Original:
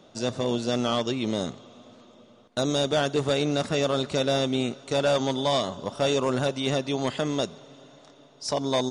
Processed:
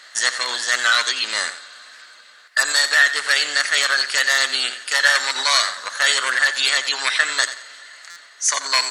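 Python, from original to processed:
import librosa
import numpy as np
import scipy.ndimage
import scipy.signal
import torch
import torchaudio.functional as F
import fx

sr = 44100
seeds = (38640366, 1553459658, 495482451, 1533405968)

p1 = fx.high_shelf(x, sr, hz=3300.0, db=6.0)
p2 = fx.rider(p1, sr, range_db=10, speed_s=0.5)
p3 = p1 + F.gain(torch.from_numpy(p2), 2.5).numpy()
p4 = fx.highpass_res(p3, sr, hz=1500.0, q=3.9)
p5 = fx.formant_shift(p4, sr, semitones=3)
p6 = p5 + fx.echo_feedback(p5, sr, ms=88, feedback_pct=26, wet_db=-12.5, dry=0)
p7 = fx.buffer_glitch(p6, sr, at_s=(8.1,), block=256, repeats=10)
y = F.gain(torch.from_numpy(p7), 1.5).numpy()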